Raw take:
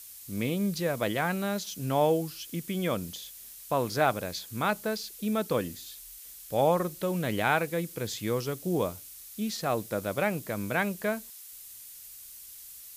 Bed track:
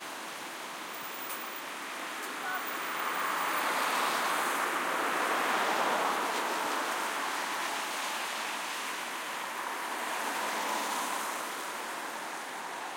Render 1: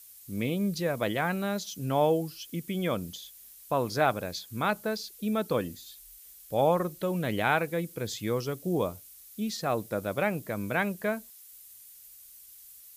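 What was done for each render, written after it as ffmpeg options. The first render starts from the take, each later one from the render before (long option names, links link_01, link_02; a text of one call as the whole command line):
ffmpeg -i in.wav -af "afftdn=noise_reduction=7:noise_floor=-47" out.wav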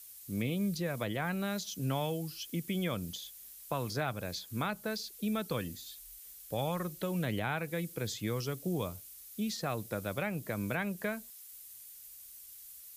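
ffmpeg -i in.wav -filter_complex "[0:a]acrossover=split=170|1500[link_01][link_02][link_03];[link_02]acompressor=threshold=-35dB:ratio=6[link_04];[link_03]alimiter=level_in=5.5dB:limit=-24dB:level=0:latency=1:release=229,volume=-5.5dB[link_05];[link_01][link_04][link_05]amix=inputs=3:normalize=0" out.wav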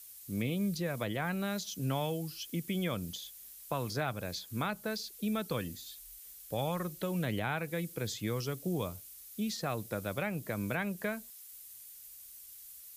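ffmpeg -i in.wav -af anull out.wav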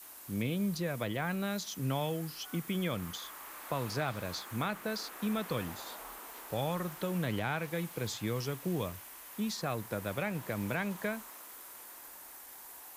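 ffmpeg -i in.wav -i bed.wav -filter_complex "[1:a]volume=-18.5dB[link_01];[0:a][link_01]amix=inputs=2:normalize=0" out.wav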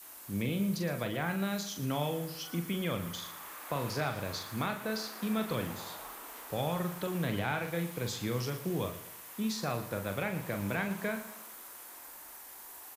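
ffmpeg -i in.wav -filter_complex "[0:a]asplit=2[link_01][link_02];[link_02]adelay=41,volume=-7dB[link_03];[link_01][link_03]amix=inputs=2:normalize=0,aecho=1:1:115|230|345|460:0.211|0.0888|0.0373|0.0157" out.wav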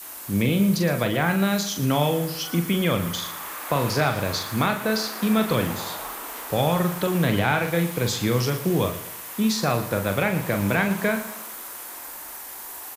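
ffmpeg -i in.wav -af "volume=11.5dB" out.wav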